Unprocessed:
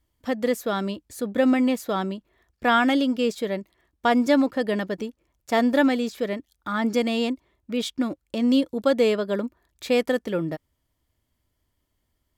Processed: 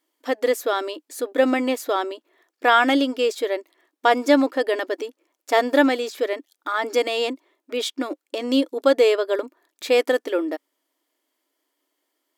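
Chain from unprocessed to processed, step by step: brick-wall FIR high-pass 260 Hz; trim +4 dB

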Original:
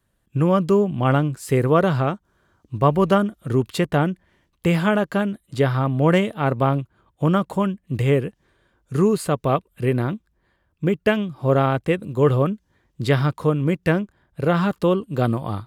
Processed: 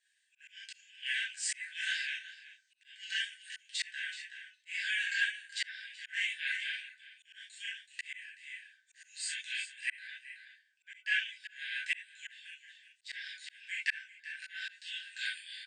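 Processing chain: flange 0.65 Hz, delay 8 ms, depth 7.5 ms, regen +51%; on a send: delay 377 ms -17 dB; on the sum: gated-style reverb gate 90 ms flat, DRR -5 dB; slow attack 450 ms; FFT band-pass 1.5–9.1 kHz; trim +2 dB

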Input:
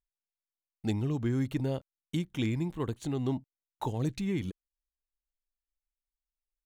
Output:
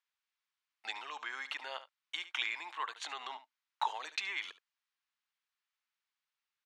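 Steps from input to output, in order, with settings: low-pass 3.7 kHz 12 dB/octave; on a send: delay 72 ms -17 dB; on the sum: peak limiter -25.5 dBFS, peak gain reduction 7 dB; high-pass 990 Hz 24 dB/octave; trim +12 dB

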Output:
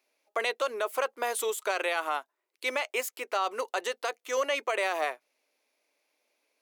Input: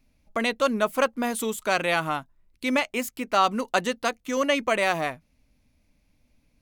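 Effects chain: elliptic high-pass 380 Hz, stop band 80 dB; peak limiter -18.5 dBFS, peak gain reduction 9.5 dB

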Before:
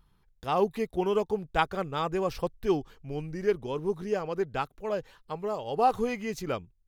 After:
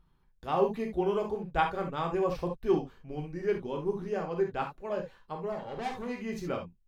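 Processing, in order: treble shelf 3.7 kHz -9 dB; 5.52–6.16 s: valve stage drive 31 dB, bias 0.6; gated-style reverb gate 90 ms flat, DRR 1.5 dB; trim -3.5 dB

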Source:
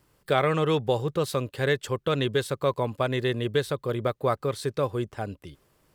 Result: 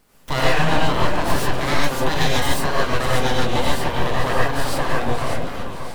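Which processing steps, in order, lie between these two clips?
1.97–2.47 s: treble shelf 6 kHz +9.5 dB; in parallel at +1 dB: compression, threshold -33 dBFS, peak gain reduction 14.5 dB; on the sum: echo whose repeats swap between lows and highs 291 ms, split 830 Hz, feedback 70%, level -6 dB; full-wave rectifier; gated-style reverb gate 160 ms rising, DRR -5.5 dB

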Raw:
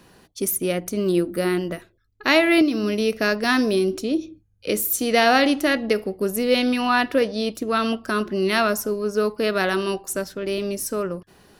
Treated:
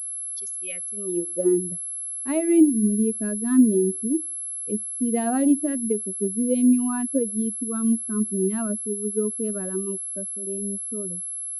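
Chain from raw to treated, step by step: expander on every frequency bin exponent 2; band-pass sweep 4.3 kHz -> 240 Hz, 0.41–1.67 s; class-D stage that switches slowly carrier 11 kHz; trim +8.5 dB

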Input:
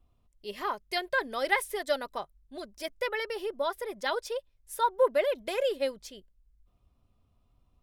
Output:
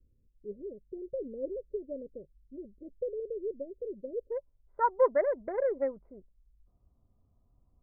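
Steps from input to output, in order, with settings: local Wiener filter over 25 samples; steep low-pass 540 Hz 96 dB/octave, from 4.30 s 2 kHz

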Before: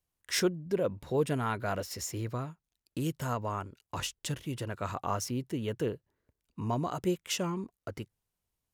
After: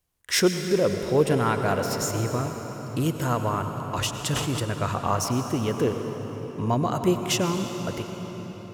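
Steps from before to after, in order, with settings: reverberation RT60 5.2 s, pre-delay 90 ms, DRR 5.5 dB; 4.24–4.64 s: decay stretcher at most 45 dB/s; trim +7.5 dB

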